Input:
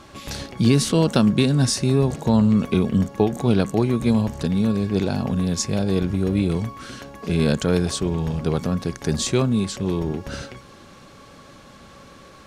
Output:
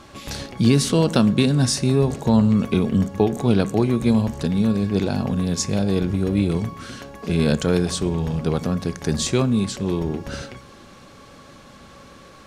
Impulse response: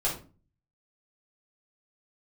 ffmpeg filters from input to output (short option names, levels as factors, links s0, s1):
-filter_complex "[0:a]asplit=2[s0][s1];[1:a]atrim=start_sample=2205,asetrate=22491,aresample=44100[s2];[s1][s2]afir=irnorm=-1:irlink=0,volume=0.0376[s3];[s0][s3]amix=inputs=2:normalize=0"